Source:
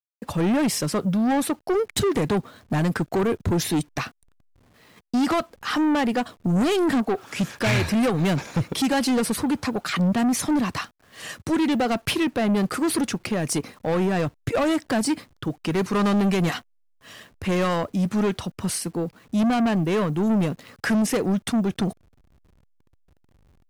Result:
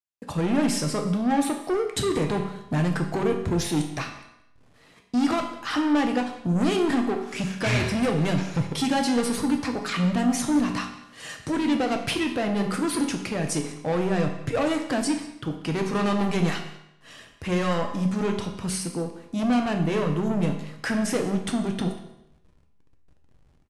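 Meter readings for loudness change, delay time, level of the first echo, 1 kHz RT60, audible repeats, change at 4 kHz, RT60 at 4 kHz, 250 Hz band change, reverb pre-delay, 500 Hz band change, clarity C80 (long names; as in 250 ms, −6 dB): −2.0 dB, 189 ms, −19.5 dB, 0.80 s, 1, −1.5 dB, 0.75 s, −2.0 dB, 5 ms, −2.0 dB, 10.0 dB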